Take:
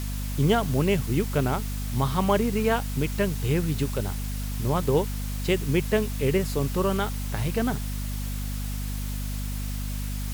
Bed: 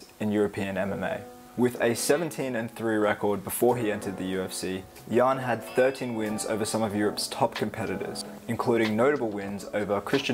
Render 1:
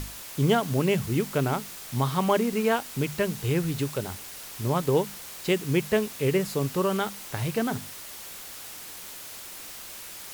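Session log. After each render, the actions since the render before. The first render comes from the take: hum notches 50/100/150/200/250 Hz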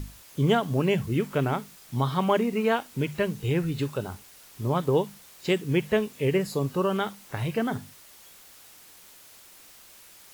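noise print and reduce 10 dB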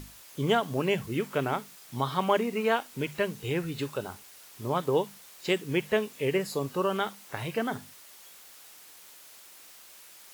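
bass shelf 210 Hz -11.5 dB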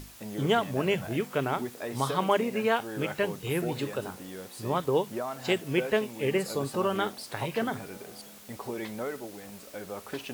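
add bed -12 dB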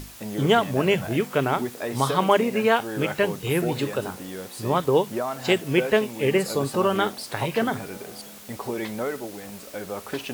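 trim +6 dB

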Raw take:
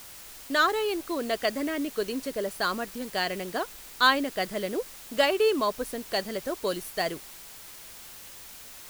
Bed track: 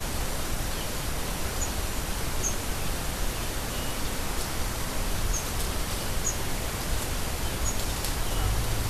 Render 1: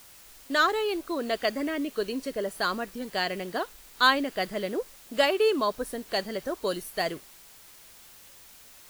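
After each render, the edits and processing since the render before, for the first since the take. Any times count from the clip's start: noise print and reduce 6 dB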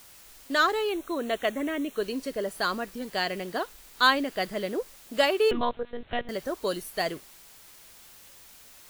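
0.89–2.03 s: Butterworth band-stop 4.8 kHz, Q 3.4; 5.51–6.29 s: monotone LPC vocoder at 8 kHz 240 Hz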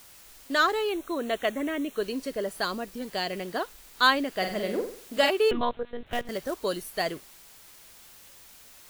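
2.64–3.33 s: dynamic bell 1.5 kHz, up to -6 dB, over -41 dBFS, Q 1.1; 4.31–5.30 s: flutter echo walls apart 8.1 m, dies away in 0.48 s; 6.06–6.58 s: short-mantissa float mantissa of 2-bit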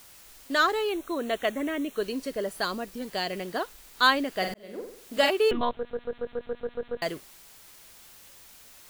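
4.54–5.18 s: fade in; 5.76 s: stutter in place 0.14 s, 9 plays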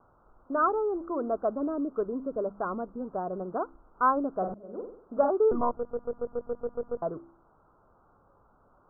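steep low-pass 1.4 kHz 96 dB/octave; de-hum 67.08 Hz, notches 5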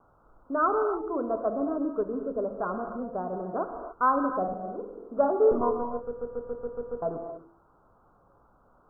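gated-style reverb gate 320 ms flat, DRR 5 dB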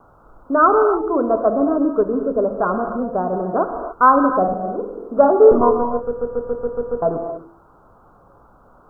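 trim +11.5 dB; peak limiter -1 dBFS, peak gain reduction 1 dB

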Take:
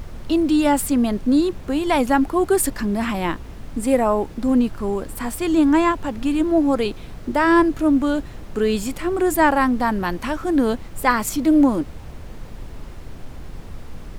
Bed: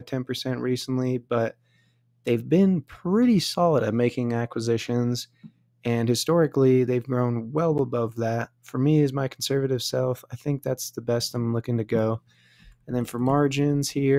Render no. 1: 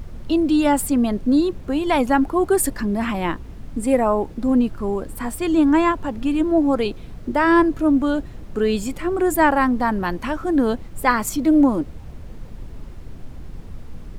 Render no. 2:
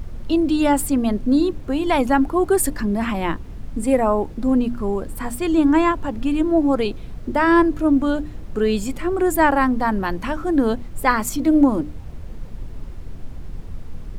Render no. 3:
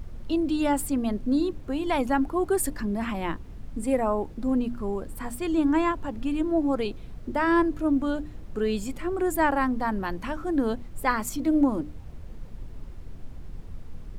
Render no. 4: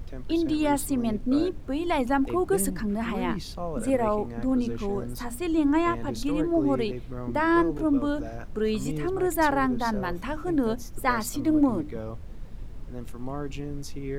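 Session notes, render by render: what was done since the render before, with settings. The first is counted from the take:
noise reduction 6 dB, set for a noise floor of -37 dBFS
bass shelf 120 Hz +4 dB; hum notches 60/120/180/240/300 Hz
trim -7 dB
add bed -13 dB

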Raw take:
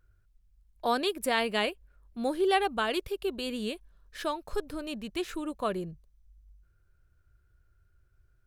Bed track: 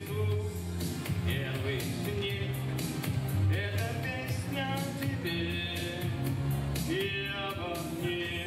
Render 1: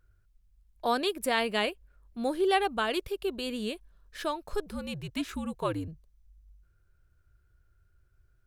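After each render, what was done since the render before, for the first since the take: 4.66–5.88 s: frequency shift -74 Hz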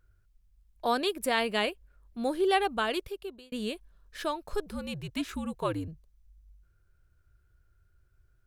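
2.88–3.52 s: fade out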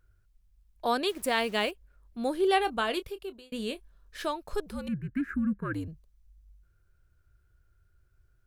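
1.09–1.71 s: send-on-delta sampling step -47 dBFS; 2.40–4.28 s: doubling 26 ms -13 dB; 4.88–5.74 s: FFT filter 140 Hz 0 dB, 200 Hz +11 dB, 830 Hz -23 dB, 1.6 kHz +12 dB, 3.4 kHz -28 dB, 13 kHz -16 dB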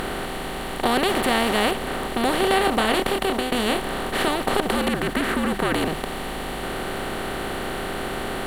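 spectral levelling over time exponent 0.2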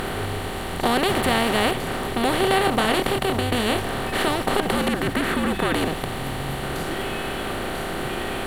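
add bed track -1.5 dB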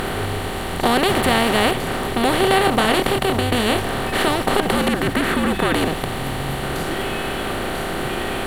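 trim +3.5 dB

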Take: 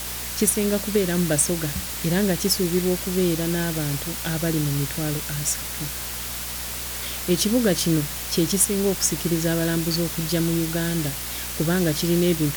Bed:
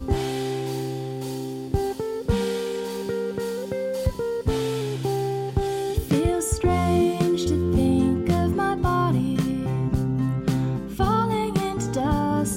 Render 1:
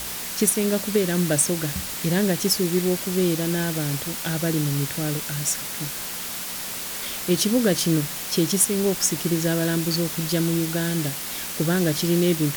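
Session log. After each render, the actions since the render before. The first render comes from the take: de-hum 60 Hz, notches 2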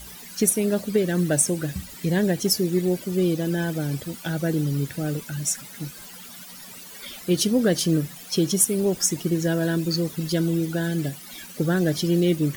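noise reduction 15 dB, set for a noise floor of -32 dBFS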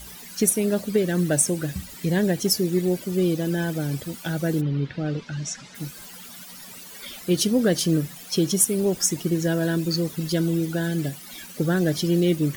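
4.60–5.74 s: low-pass 3.3 kHz -> 7 kHz 24 dB/octave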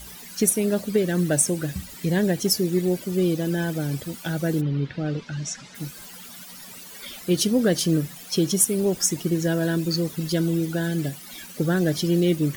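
no audible change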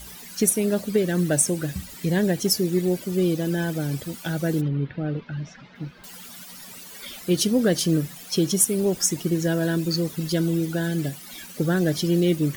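4.68–6.04 s: distance through air 310 m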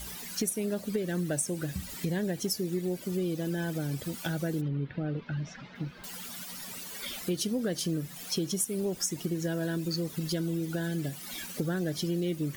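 compression 3:1, threshold -31 dBFS, peak gain reduction 12.5 dB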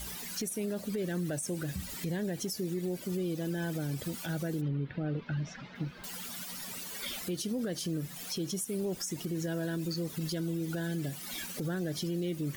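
peak limiter -26.5 dBFS, peak gain reduction 9.5 dB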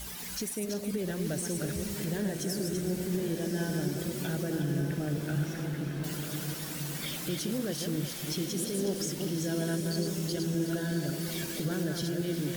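backward echo that repeats 185 ms, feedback 40%, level -4.5 dB; echo that smears into a reverb 1163 ms, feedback 45%, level -5.5 dB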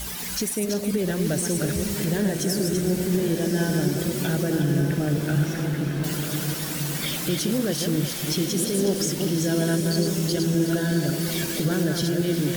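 trim +8.5 dB

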